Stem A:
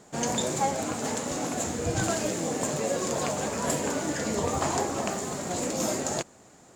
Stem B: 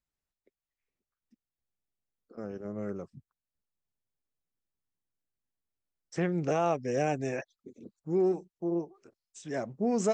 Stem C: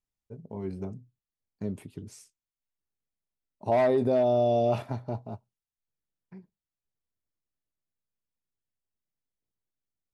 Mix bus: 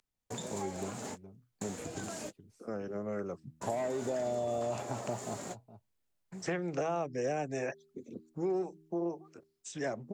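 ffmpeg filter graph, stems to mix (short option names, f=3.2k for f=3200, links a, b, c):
-filter_complex "[0:a]acompressor=threshold=-35dB:ratio=6,volume=-3.5dB[a];[1:a]bandreject=f=79.08:t=h:w=4,bandreject=f=158.16:t=h:w=4,bandreject=f=237.24:t=h:w=4,bandreject=f=316.32:t=h:w=4,bandreject=f=395.4:t=h:w=4,adynamicequalizer=threshold=0.00316:dfrequency=3100:dqfactor=0.75:tfrequency=3100:tqfactor=0.75:attack=5:release=100:ratio=0.375:range=2:mode=cutabove:tftype=bell,dynaudnorm=f=150:g=7:m=10dB,adelay=300,volume=-6dB[b];[2:a]highshelf=f=3.9k:g=-3,acompressor=threshold=-27dB:ratio=6,volume=1.5dB,asplit=3[c][d][e];[d]volume=-18dB[f];[e]apad=whole_len=297950[g];[a][g]sidechaingate=range=-60dB:threshold=-58dB:ratio=16:detection=peak[h];[f]aecho=0:1:417:1[i];[h][b][c][i]amix=inputs=4:normalize=0,acrossover=split=130|450[j][k][l];[j]acompressor=threshold=-54dB:ratio=4[m];[k]acompressor=threshold=-41dB:ratio=4[n];[l]acompressor=threshold=-34dB:ratio=4[o];[m][n][o]amix=inputs=3:normalize=0"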